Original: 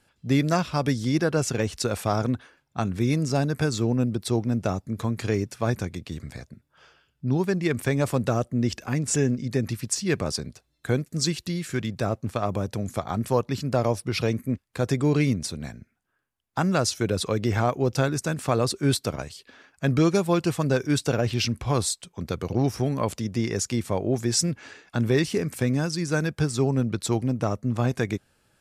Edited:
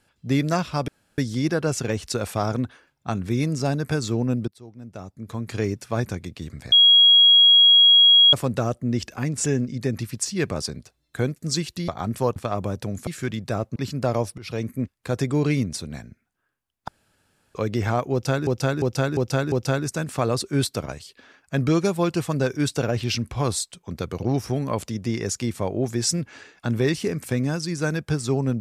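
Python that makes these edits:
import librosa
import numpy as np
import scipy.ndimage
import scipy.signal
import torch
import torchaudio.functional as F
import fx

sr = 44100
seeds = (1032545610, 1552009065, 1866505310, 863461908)

y = fx.edit(x, sr, fx.insert_room_tone(at_s=0.88, length_s=0.3),
    fx.fade_in_from(start_s=4.18, length_s=1.14, curve='qua', floor_db=-21.5),
    fx.bleep(start_s=6.42, length_s=1.61, hz=3300.0, db=-10.0),
    fx.swap(start_s=11.58, length_s=0.69, other_s=12.98, other_length_s=0.48),
    fx.fade_in_from(start_s=14.08, length_s=0.33, floor_db=-17.0),
    fx.room_tone_fill(start_s=16.58, length_s=0.67),
    fx.repeat(start_s=17.82, length_s=0.35, count=5), tone=tone)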